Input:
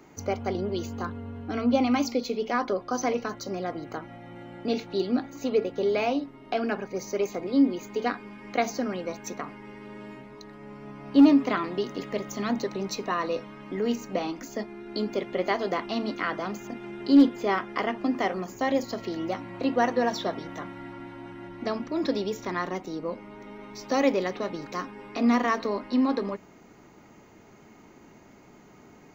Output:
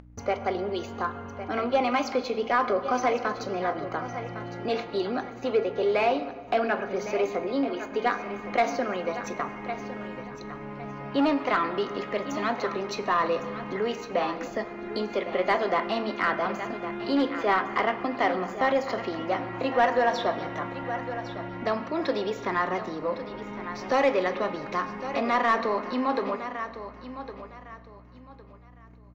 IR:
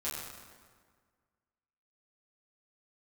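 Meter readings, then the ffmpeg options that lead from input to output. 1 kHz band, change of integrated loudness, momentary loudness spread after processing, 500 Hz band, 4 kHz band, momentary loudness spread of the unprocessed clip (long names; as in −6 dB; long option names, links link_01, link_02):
+5.0 dB, 0.0 dB, 11 LU, +2.0 dB, +0.5 dB, 17 LU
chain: -filter_complex "[0:a]bass=frequency=250:gain=10,treble=frequency=4000:gain=-6,acrossover=split=400|3300[link_01][link_02][link_03];[link_01]acompressor=threshold=-39dB:ratio=6[link_04];[link_04][link_02][link_03]amix=inputs=3:normalize=0,agate=range=-42dB:threshold=-42dB:ratio=16:detection=peak,aeval=exprs='val(0)+0.001*(sin(2*PI*60*n/s)+sin(2*PI*2*60*n/s)/2+sin(2*PI*3*60*n/s)/3+sin(2*PI*4*60*n/s)/4+sin(2*PI*5*60*n/s)/5)':channel_layout=same,acompressor=mode=upward:threshold=-37dB:ratio=2.5,aecho=1:1:1108|2216|3324:0.224|0.0582|0.0151,asplit=2[link_05][link_06];[1:a]atrim=start_sample=2205,lowshelf=frequency=220:gain=10.5[link_07];[link_06][link_07]afir=irnorm=-1:irlink=0,volume=-14.5dB[link_08];[link_05][link_08]amix=inputs=2:normalize=0,asplit=2[link_09][link_10];[link_10]highpass=frequency=720:poles=1,volume=12dB,asoftclip=type=tanh:threshold=-12dB[link_11];[link_09][link_11]amix=inputs=2:normalize=0,lowpass=frequency=2300:poles=1,volume=-6dB"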